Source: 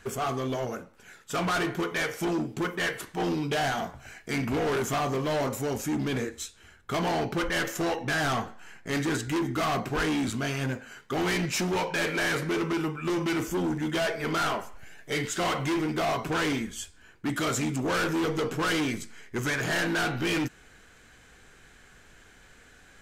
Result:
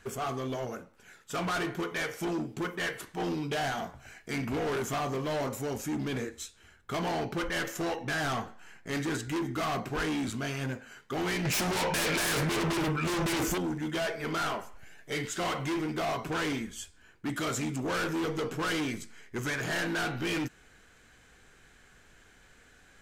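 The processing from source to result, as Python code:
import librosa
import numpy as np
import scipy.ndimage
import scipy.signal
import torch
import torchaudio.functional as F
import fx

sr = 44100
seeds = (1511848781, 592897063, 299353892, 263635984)

y = fx.fold_sine(x, sr, drive_db=8, ceiling_db=-21.5, at=(11.45, 13.58))
y = F.gain(torch.from_numpy(y), -4.0).numpy()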